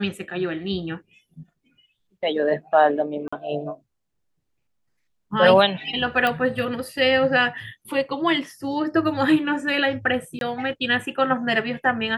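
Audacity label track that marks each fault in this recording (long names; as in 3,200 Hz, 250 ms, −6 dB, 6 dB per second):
3.280000	3.330000	drop-out 45 ms
6.270000	6.270000	click −10 dBFS
10.390000	10.410000	drop-out 22 ms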